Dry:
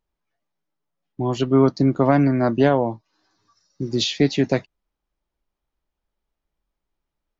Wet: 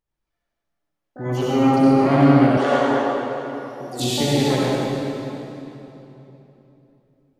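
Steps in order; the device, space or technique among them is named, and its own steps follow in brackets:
shimmer-style reverb (pitch-shifted copies added +12 semitones −7 dB; convolution reverb RT60 3.3 s, pre-delay 55 ms, DRR −7.5 dB)
0:02.57–0:04.00: bass and treble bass −14 dB, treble +3 dB
level −7 dB

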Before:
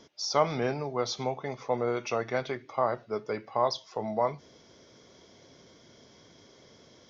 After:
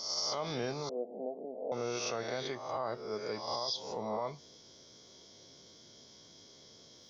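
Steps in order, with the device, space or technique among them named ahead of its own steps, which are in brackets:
peak hold with a rise ahead of every peak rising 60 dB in 0.80 s
0:00.89–0:01.72: Chebyshev band-pass filter 190–700 Hz, order 4
over-bright horn tweeter (high shelf with overshoot 3,000 Hz +7.5 dB, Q 1.5; brickwall limiter −18.5 dBFS, peak gain reduction 10 dB)
level −7 dB

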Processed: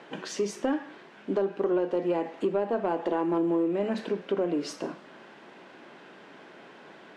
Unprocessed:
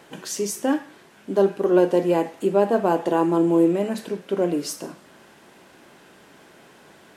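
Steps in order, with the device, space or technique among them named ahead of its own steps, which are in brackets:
AM radio (band-pass filter 190–3,500 Hz; downward compressor 6 to 1, threshold −24 dBFS, peak gain reduction 11 dB; soft clipping −17.5 dBFS, distortion −23 dB)
level +1.5 dB

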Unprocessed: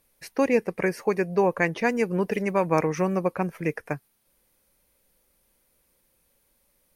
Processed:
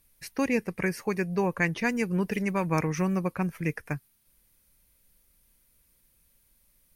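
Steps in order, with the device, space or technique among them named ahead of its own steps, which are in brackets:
smiley-face EQ (low-shelf EQ 140 Hz +7 dB; parametric band 560 Hz −9 dB 1.8 octaves; high-shelf EQ 9,100 Hz +3.5 dB)

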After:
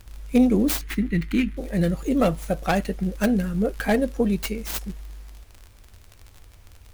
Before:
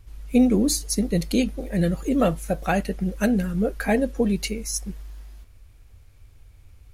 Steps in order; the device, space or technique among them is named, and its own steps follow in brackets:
record under a worn stylus (stylus tracing distortion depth 0.43 ms; surface crackle 48 per second −33 dBFS; pink noise bed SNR 35 dB)
0:00.81–0:01.57: drawn EQ curve 330 Hz 0 dB, 540 Hz −18 dB, 2,000 Hz +7 dB, 5,100 Hz −12 dB

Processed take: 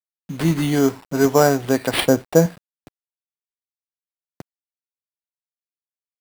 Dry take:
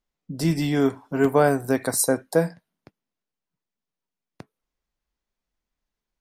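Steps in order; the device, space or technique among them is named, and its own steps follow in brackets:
0:02.00–0:02.46: spectral tilt −2 dB per octave
early 8-bit sampler (sample-rate reduction 6,400 Hz, jitter 0%; bit reduction 8 bits)
level +3.5 dB

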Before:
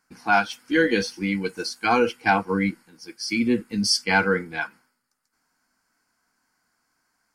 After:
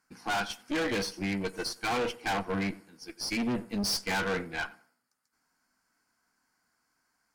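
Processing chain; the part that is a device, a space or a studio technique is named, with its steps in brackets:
rockabilly slapback (tube saturation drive 27 dB, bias 0.7; tape delay 93 ms, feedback 34%, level −16 dB, low-pass 1,400 Hz)

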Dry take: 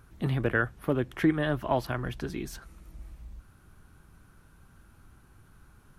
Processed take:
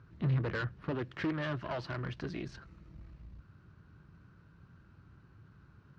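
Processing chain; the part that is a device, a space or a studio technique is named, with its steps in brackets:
0:00.91–0:02.46: spectral tilt +1.5 dB per octave
guitar amplifier (tube saturation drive 31 dB, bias 0.65; bass and treble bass +9 dB, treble +7 dB; loudspeaker in its box 110–3,900 Hz, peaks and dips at 230 Hz −5 dB, 770 Hz −6 dB, 2,300 Hz −3 dB, 3,400 Hz −7 dB)

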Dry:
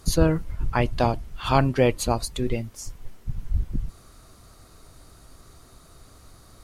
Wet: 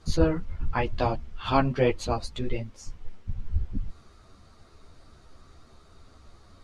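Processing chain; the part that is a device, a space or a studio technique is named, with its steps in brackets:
string-machine ensemble chorus (string-ensemble chorus; low-pass filter 4,900 Hz 12 dB per octave)

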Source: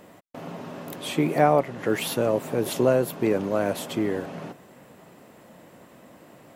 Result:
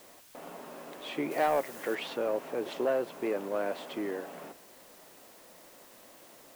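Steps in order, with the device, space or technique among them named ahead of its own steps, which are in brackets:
tape answering machine (band-pass filter 340–3,400 Hz; soft clipping −14 dBFS, distortion −17 dB; tape wow and flutter; white noise bed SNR 22 dB)
0:01.31–0:01.95: high-shelf EQ 3,700 Hz +9 dB
level −5.5 dB

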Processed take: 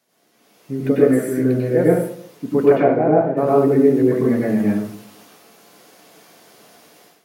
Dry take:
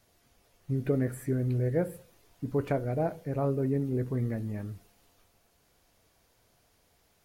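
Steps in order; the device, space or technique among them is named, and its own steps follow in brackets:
0:02.65–0:03.36: low-pass filter 2,900 Hz → 1,300 Hz 12 dB per octave
far laptop microphone (convolution reverb RT60 0.55 s, pre-delay 90 ms, DRR −5 dB; high-pass filter 180 Hz 24 dB per octave; automatic gain control gain up to 15.5 dB)
level −1 dB

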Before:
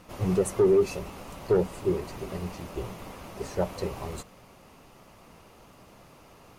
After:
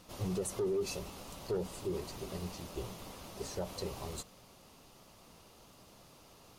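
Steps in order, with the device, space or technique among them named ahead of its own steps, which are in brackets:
over-bright horn tweeter (high shelf with overshoot 2,900 Hz +6 dB, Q 1.5; brickwall limiter −21.5 dBFS, peak gain reduction 7.5 dB)
level −6.5 dB

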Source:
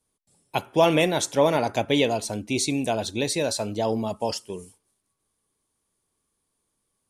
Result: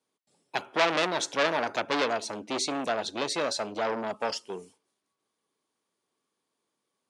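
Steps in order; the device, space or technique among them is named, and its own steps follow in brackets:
public-address speaker with an overloaded transformer (saturating transformer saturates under 3,300 Hz; band-pass filter 250–5,500 Hz)

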